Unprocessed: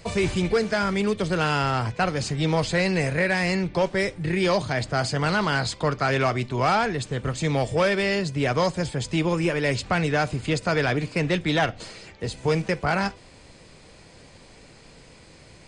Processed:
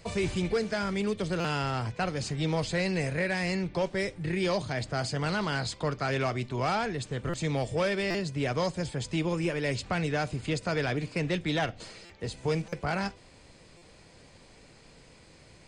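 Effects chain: dynamic bell 1.2 kHz, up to -3 dB, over -32 dBFS, Q 0.84; buffer glitch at 1.40/7.29/8.10/12.05/12.68/13.77 s, samples 256, times 7; trim -5.5 dB

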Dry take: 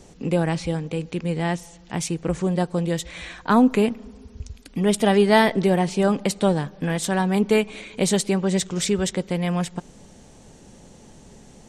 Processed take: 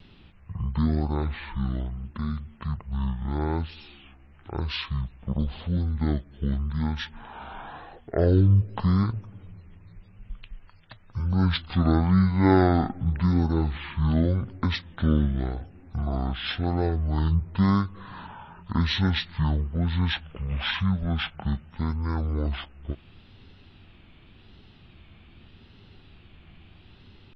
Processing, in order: wow and flutter 150 cents; speed mistake 78 rpm record played at 33 rpm; trim -3.5 dB

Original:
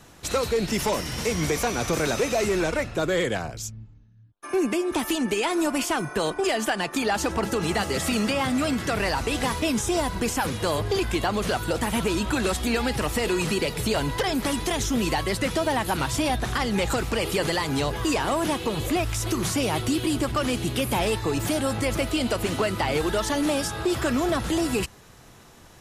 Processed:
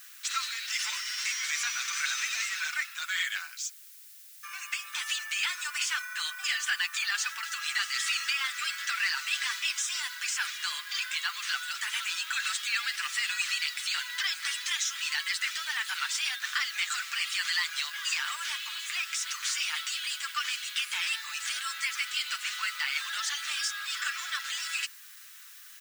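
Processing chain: low-pass 7.9 kHz 24 dB/octave; comb 6.7 ms, depth 52%; added noise blue -51 dBFS; steep high-pass 1.4 kHz 36 dB/octave

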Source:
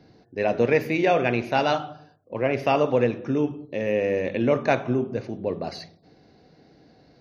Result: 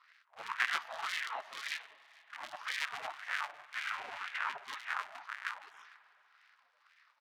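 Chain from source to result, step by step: cycle switcher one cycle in 3, inverted; 3.95–4.61 s: treble shelf 4.5 kHz -8 dB; in parallel at -5 dB: saturation -23.5 dBFS, distortion -7 dB; on the sum: spectral gate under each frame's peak -20 dB weak; wah-wah 1.9 Hz 630–1900 Hz, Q 3.1; delay 450 ms -24 dB; spring tank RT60 4 s, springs 47 ms, chirp 75 ms, DRR 18 dB; trim +6 dB

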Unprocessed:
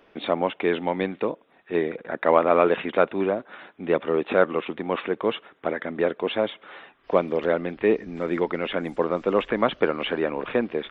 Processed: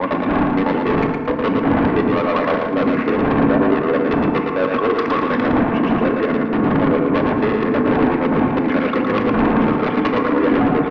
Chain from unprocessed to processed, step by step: slices played last to first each 106 ms, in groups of 5; wind noise 290 Hz -22 dBFS; gate with hold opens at -22 dBFS; bass shelf 270 Hz -11.5 dB; reverse; compression 12:1, threshold -25 dBFS, peak gain reduction 14 dB; reverse; transient shaper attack +12 dB, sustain -5 dB; saturation -27.5 dBFS, distortion -4 dB; elliptic band-pass 110–2100 Hz; small resonant body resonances 240/1100 Hz, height 14 dB, ringing for 35 ms; sine folder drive 9 dB, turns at -15 dBFS; feedback delay 113 ms, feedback 30%, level -4.5 dB; FDN reverb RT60 2.2 s, low-frequency decay 0.85×, high-frequency decay 0.4×, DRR 5.5 dB

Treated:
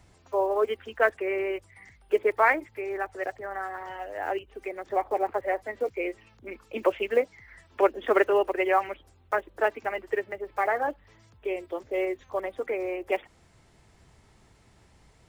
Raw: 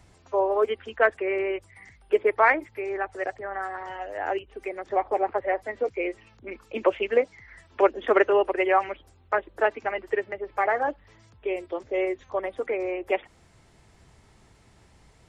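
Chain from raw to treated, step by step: block-companded coder 7-bit; trim -2 dB

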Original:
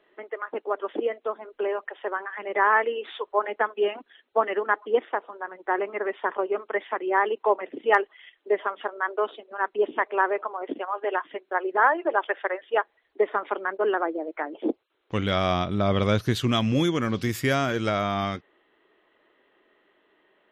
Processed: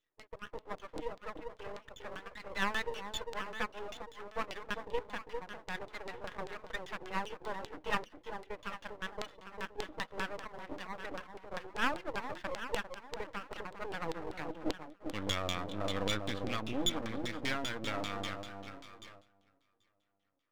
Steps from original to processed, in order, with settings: treble shelf 5.5 kHz +8.5 dB; echo whose repeats swap between lows and highs 399 ms, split 920 Hz, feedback 51%, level -5 dB; gate -40 dBFS, range -13 dB; small resonant body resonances 300/490/3500 Hz, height 16 dB, ringing for 75 ms; LFO low-pass saw down 5.1 Hz 460–4200 Hz; amplifier tone stack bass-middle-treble 5-5-5; half-wave rectifier

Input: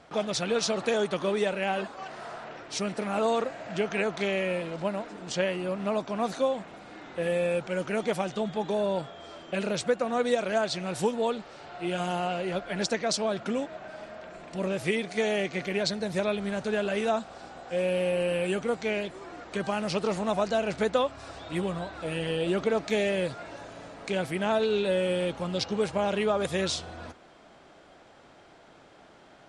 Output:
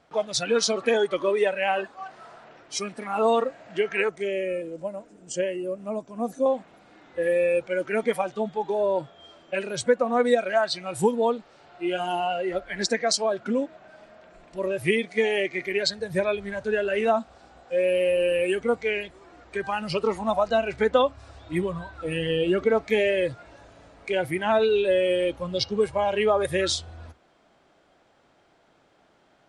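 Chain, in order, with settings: spectral noise reduction 13 dB; 4.09–6.46 s: ten-band graphic EQ 1 kHz -11 dB, 2 kHz -6 dB, 4 kHz -11 dB, 8 kHz +6 dB; trim +5.5 dB

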